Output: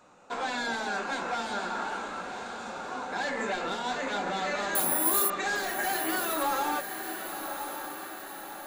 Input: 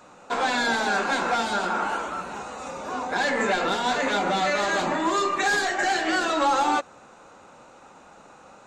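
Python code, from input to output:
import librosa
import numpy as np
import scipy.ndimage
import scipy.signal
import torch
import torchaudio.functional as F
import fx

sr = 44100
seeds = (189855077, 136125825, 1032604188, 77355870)

y = fx.resample_bad(x, sr, factor=4, down='none', up='zero_stuff', at=(4.75, 5.3))
y = fx.echo_diffused(y, sr, ms=1087, feedback_pct=56, wet_db=-8.0)
y = F.gain(torch.from_numpy(y), -8.0).numpy()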